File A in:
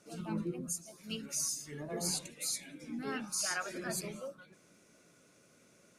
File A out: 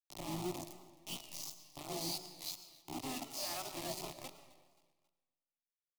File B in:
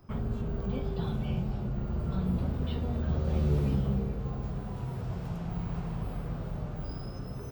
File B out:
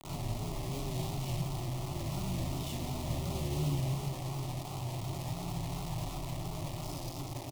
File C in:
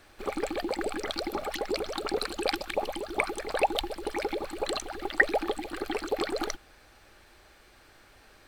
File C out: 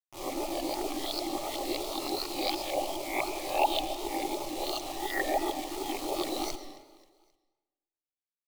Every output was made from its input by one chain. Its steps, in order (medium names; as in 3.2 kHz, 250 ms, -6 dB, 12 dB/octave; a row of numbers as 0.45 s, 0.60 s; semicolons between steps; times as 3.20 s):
reverse spectral sustain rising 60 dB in 0.47 s; inverse Chebyshev low-pass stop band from 11 kHz, stop band 50 dB; hum notches 50/100/150/200/250/300 Hz; word length cut 6-bit, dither none; static phaser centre 310 Hz, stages 8; feedback delay 267 ms, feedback 45%, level -21 dB; algorithmic reverb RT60 1.2 s, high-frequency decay 0.75×, pre-delay 70 ms, DRR 10.5 dB; vibrato 2.8 Hz 74 cents; trim -2 dB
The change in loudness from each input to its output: -5.5 LU, -4.0 LU, -1.5 LU